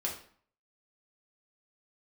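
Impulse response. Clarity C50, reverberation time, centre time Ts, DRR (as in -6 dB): 7.0 dB, 0.50 s, 25 ms, -3.5 dB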